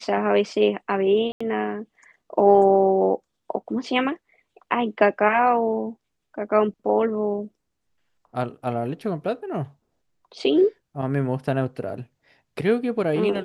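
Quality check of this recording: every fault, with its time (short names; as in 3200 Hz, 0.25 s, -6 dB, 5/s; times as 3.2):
1.32–1.41 gap 85 ms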